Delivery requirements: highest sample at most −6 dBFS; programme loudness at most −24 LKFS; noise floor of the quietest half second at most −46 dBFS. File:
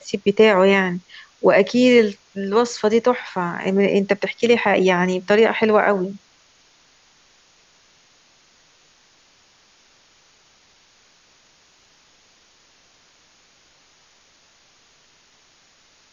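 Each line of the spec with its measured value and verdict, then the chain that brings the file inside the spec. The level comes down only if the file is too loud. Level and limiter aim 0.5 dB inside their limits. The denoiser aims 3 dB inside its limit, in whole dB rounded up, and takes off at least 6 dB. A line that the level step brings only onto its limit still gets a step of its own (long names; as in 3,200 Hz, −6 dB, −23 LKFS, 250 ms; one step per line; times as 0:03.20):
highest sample −3.5 dBFS: out of spec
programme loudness −17.5 LKFS: out of spec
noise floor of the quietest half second −56 dBFS: in spec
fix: level −7 dB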